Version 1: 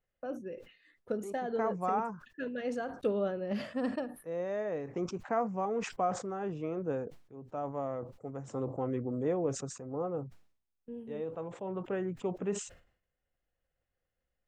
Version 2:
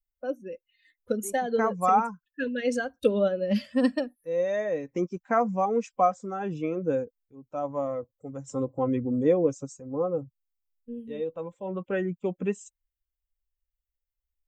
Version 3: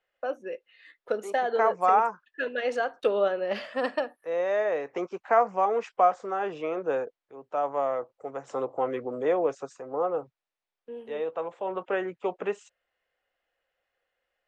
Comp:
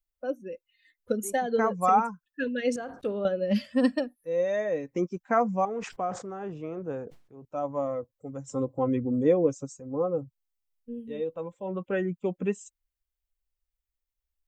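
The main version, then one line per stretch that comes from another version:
2
0:02.76–0:03.25: punch in from 1
0:05.65–0:07.45: punch in from 1
not used: 3

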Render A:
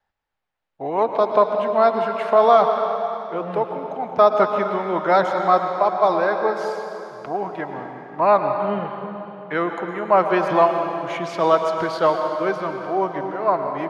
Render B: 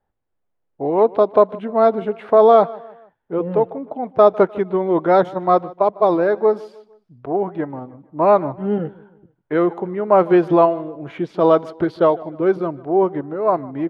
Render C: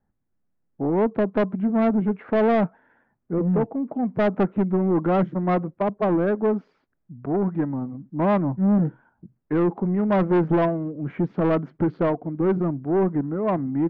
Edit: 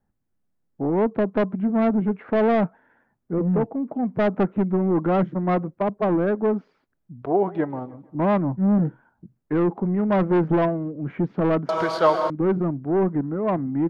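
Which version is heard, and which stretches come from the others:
C
0:07.22–0:08.15: punch in from B
0:11.69–0:12.30: punch in from A

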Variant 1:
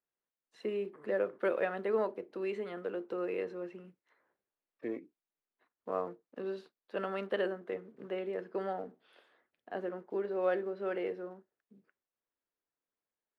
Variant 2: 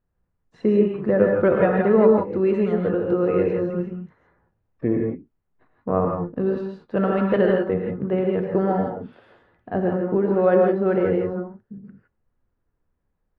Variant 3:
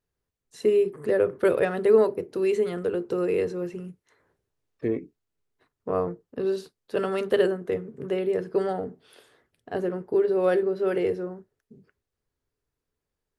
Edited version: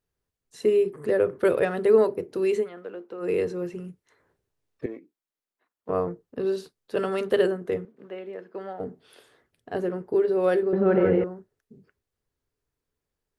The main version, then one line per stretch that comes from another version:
3
0:02.64–0:03.24: punch in from 1, crossfade 0.10 s
0:04.86–0:05.89: punch in from 1
0:07.85–0:08.80: punch in from 1
0:10.73–0:11.24: punch in from 2

